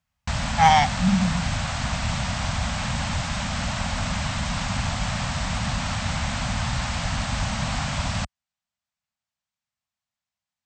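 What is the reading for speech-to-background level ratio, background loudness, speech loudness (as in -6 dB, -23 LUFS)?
6.5 dB, -27.0 LUFS, -20.5 LUFS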